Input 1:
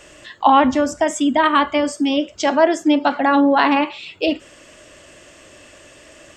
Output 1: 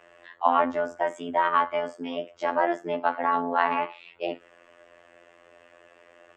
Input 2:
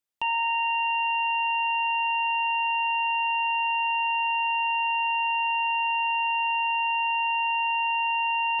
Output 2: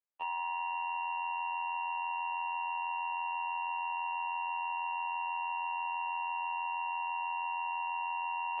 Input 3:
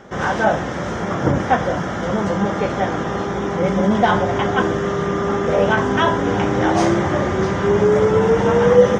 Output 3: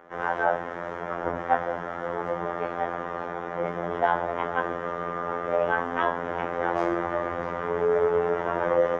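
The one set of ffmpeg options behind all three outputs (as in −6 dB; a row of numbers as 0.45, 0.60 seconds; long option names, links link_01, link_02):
-filter_complex "[0:a]tremolo=f=130:d=0.571,afftfilt=real='hypot(re,im)*cos(PI*b)':imag='0':win_size=2048:overlap=0.75,acrossover=split=400 2300:gain=0.2 1 0.1[link_01][link_02][link_03];[link_01][link_02][link_03]amix=inputs=3:normalize=0"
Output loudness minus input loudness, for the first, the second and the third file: −9.5, −11.0, −9.5 LU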